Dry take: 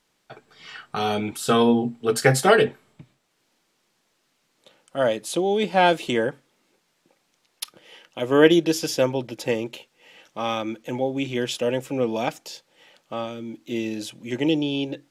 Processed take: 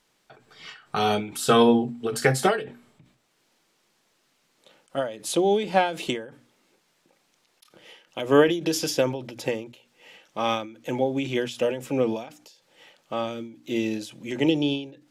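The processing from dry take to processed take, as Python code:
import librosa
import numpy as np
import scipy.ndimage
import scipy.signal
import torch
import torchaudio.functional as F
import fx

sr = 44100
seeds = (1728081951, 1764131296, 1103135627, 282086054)

y = fx.hum_notches(x, sr, base_hz=60, count=5)
y = fx.end_taper(y, sr, db_per_s=110.0)
y = y * 10.0 ** (1.5 / 20.0)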